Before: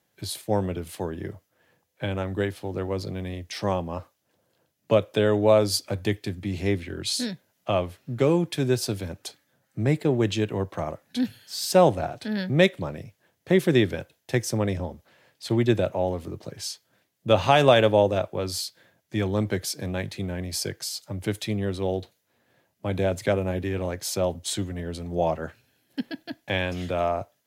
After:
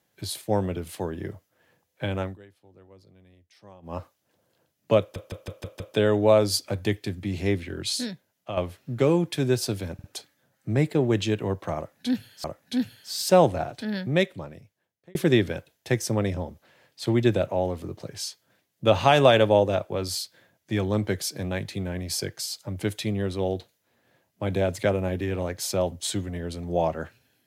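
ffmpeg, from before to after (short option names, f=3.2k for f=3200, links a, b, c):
-filter_complex "[0:a]asplit=13[a][b][c][d][e][f][g][h][i][j][k][l][m];[a]atrim=end=2.38,asetpts=PTS-STARTPTS,afade=t=out:st=2.24:d=0.14:silence=0.0668344[n];[b]atrim=start=2.38:end=3.82,asetpts=PTS-STARTPTS,volume=-23.5dB[o];[c]atrim=start=3.82:end=5.162,asetpts=PTS-STARTPTS,afade=t=in:d=0.14:silence=0.0668344[p];[d]atrim=start=4.998:end=5.162[q];[e]atrim=start=4.998:end=5.162[r];[f]atrim=start=4.998:end=5.162[s];[g]atrim=start=4.998:end=5.162[t];[h]atrim=start=4.998:end=7.77,asetpts=PTS-STARTPTS,afade=t=out:st=2.012:d=0.76:silence=0.334965[u];[i]atrim=start=7.77:end=9.192,asetpts=PTS-STARTPTS,afade=t=in:d=0.004:c=hsin:silence=0.334965[v];[j]atrim=start=9.138:end=9.192[w];[k]atrim=start=9.138:end=11.542[x];[l]atrim=start=10.868:end=13.58,asetpts=PTS-STARTPTS,afade=t=out:st=1.242:d=1.47[y];[m]atrim=start=13.58,asetpts=PTS-STARTPTS,afade=t=in:d=0.004:c=hsin[z];[n][o][p]concat=n=3:v=0:a=1[aa];[aa][q]acrossfade=d=0.004:c1=hsin:c2=hsin[ab];[ab][r]acrossfade=d=0.004:c1=hsin:c2=hsin[ac];[ac][s]acrossfade=d=0.004:c1=hsin:c2=hsin[ad];[ad][t]acrossfade=d=0.004:c1=hsin:c2=hsin[ae];[u][v]concat=n=2:v=0:a=1[af];[ae][af]acrossfade=d=0.004:c1=hsin:c2=hsin[ag];[ag][w]acrossfade=d=0.004:c1=hsin:c2=hsin[ah];[ah][x]acrossfade=d=0.004:c1=hsin:c2=hsin[ai];[y][z]concat=n=2:v=0:a=1[aj];[ai][aj]acrossfade=d=0.004:c1=hsin:c2=hsin"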